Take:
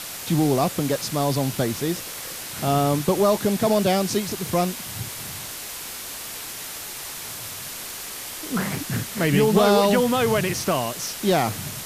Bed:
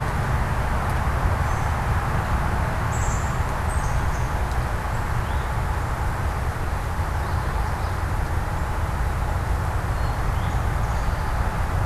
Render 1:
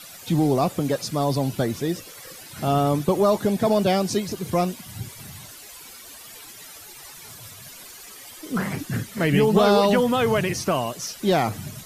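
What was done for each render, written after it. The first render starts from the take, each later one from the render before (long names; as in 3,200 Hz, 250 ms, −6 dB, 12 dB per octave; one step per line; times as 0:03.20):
broadband denoise 13 dB, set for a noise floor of −35 dBFS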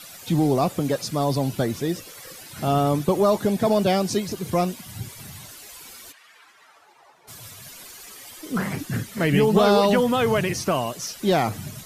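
0:06.11–0:07.27: resonant band-pass 2,000 Hz → 610 Hz, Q 1.5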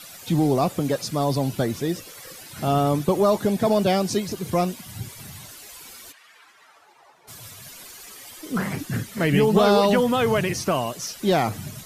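no processing that can be heard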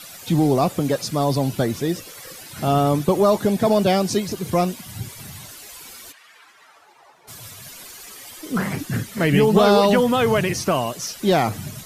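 level +2.5 dB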